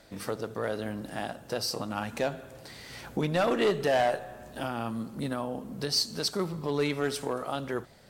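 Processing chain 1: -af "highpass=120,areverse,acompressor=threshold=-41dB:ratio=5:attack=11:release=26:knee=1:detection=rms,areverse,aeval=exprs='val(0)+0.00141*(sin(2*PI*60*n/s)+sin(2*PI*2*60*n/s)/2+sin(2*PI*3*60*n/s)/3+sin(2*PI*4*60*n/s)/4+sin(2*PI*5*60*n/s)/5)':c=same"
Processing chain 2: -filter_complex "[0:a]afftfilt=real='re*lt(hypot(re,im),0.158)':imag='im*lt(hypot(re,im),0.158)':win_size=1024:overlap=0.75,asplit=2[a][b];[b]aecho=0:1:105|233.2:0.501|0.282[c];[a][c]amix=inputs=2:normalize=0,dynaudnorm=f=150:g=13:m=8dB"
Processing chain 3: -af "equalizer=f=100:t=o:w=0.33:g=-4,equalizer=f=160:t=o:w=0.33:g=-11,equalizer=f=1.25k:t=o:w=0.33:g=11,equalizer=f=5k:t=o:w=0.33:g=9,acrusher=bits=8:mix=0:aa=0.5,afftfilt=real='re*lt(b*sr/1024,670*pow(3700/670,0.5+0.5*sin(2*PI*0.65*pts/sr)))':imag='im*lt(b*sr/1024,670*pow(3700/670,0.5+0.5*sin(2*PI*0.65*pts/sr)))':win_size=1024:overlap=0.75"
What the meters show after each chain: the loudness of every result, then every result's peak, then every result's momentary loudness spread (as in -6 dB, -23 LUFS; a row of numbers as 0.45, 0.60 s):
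-41.5, -26.5, -31.5 LUFS; -27.5, -10.5, -13.0 dBFS; 4, 11, 13 LU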